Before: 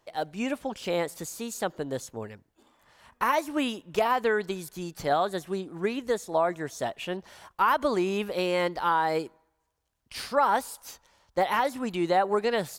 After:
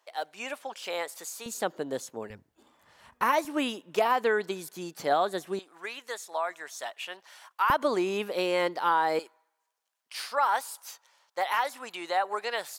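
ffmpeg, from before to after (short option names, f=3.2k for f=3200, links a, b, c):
-af "asetnsamples=n=441:p=0,asendcmd='1.46 highpass f 220;2.3 highpass f 60;3.45 highpass f 240;5.59 highpass f 990;7.7 highpass f 260;9.19 highpass f 780',highpass=690"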